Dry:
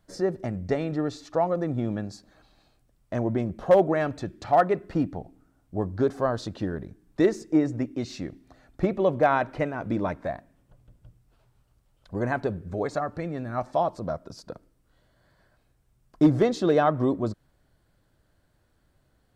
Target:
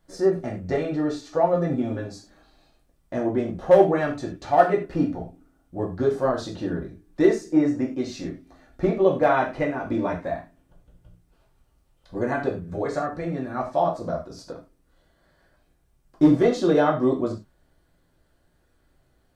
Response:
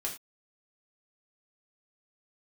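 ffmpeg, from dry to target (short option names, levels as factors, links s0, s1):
-filter_complex "[0:a]asettb=1/sr,asplit=3[s0][s1][s2];[s0]atrim=end=1.524[s3];[s1]atrim=start=1.52:end=2.07,asetpts=PTS-STARTPTS,afade=t=in:d=0.004:c=qsin,afade=t=out:st=0.546:d=0.004:c=qsin,aecho=1:1:7.5:0.54,atrim=end_sample=24255[s4];[s2]atrim=start=2.066[s5];[s3][s4]acrossfade=d=0.004:c1=hsin:c2=qsin[s6];[s6][s5]acrossfade=d=0.004:c1=qsin:c2=hsin[s7];[1:a]atrim=start_sample=2205[s8];[s7][s8]afir=irnorm=-1:irlink=0"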